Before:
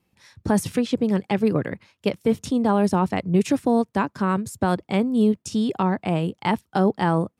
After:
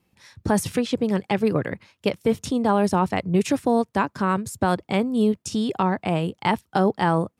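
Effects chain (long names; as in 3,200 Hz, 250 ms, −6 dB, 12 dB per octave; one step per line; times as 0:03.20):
dynamic equaliser 230 Hz, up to −4 dB, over −29 dBFS, Q 0.81
level +2 dB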